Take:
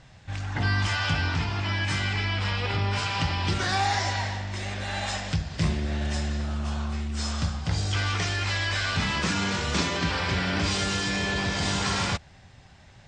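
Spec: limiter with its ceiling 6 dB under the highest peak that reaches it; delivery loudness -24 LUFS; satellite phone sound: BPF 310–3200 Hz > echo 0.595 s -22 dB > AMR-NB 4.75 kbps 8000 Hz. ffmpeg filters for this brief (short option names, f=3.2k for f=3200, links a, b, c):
-af "alimiter=limit=-19dB:level=0:latency=1,highpass=310,lowpass=3.2k,aecho=1:1:595:0.0794,volume=13dB" -ar 8000 -c:a libopencore_amrnb -b:a 4750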